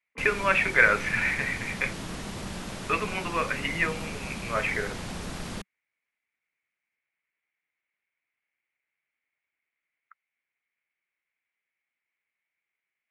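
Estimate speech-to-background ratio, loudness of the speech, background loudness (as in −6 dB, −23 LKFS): 11.0 dB, −26.0 LKFS, −37.0 LKFS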